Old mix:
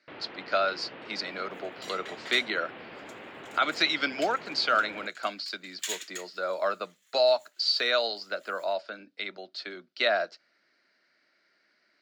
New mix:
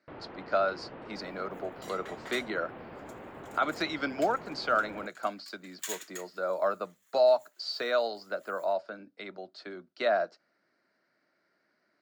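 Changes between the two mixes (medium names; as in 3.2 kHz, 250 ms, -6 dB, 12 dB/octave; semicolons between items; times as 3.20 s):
second sound +3.5 dB; master: remove frequency weighting D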